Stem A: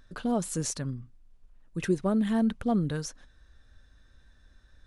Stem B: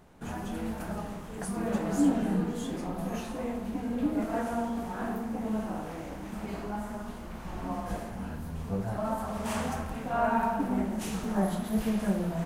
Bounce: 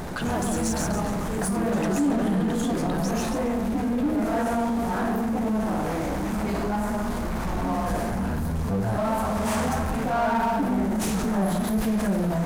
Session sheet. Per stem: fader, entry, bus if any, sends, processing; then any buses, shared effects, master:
−9.0 dB, 0.00 s, no send, echo send −3.5 dB, low-shelf EQ 380 Hz −8.5 dB
−1.5 dB, 0.00 s, no send, no echo send, parametric band 2,900 Hz −5 dB 0.49 octaves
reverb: not used
echo: repeating echo 138 ms, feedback 40%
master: power curve on the samples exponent 0.7; envelope flattener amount 50%

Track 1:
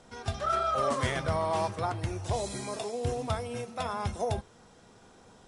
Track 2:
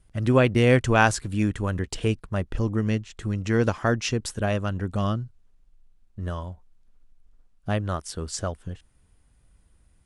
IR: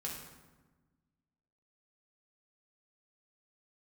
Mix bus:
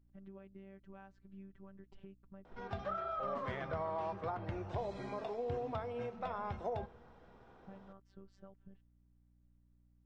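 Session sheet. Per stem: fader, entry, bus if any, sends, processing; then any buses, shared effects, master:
+1.5 dB, 2.45 s, send −17.5 dB, low-shelf EQ 340 Hz −11 dB; downward compressor 6 to 1, threshold −34 dBFS, peak gain reduction 8 dB
−15.0 dB, 0.00 s, no send, downward compressor 10 to 1, threshold −31 dBFS, peak gain reduction 18 dB; phases set to zero 194 Hz; mains hum 60 Hz, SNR 14 dB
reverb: on, RT60 1.2 s, pre-delay 3 ms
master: head-to-tape spacing loss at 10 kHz 43 dB

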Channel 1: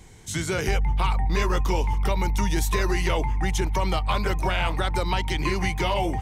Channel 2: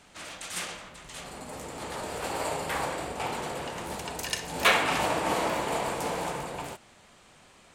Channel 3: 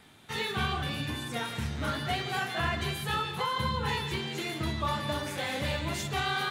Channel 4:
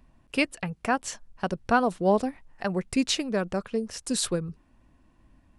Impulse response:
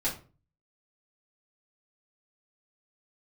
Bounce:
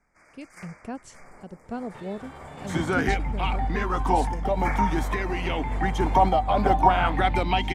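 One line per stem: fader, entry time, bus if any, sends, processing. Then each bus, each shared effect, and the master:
−0.5 dB, 2.40 s, no send, hollow resonant body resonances 260/740/3,200 Hz, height 13 dB; auto-filter bell 0.49 Hz 590–2,600 Hz +12 dB
−8.0 dB, 0.00 s, no send, Chebyshev band-stop filter 2,300–4,800 Hz, order 4; parametric band 2,500 Hz +8 dB 1.9 octaves
−2.5 dB, 1.65 s, no send, high-shelf EQ 5,600 Hz −9.5 dB; brickwall limiter −28.5 dBFS, peak gain reduction 9.5 dB
−9.0 dB, 0.00 s, no send, parametric band 1,300 Hz −13.5 dB 2.1 octaves; automatic gain control gain up to 7 dB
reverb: not used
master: high-shelf EQ 2,500 Hz −10.5 dB; sample-and-hold tremolo

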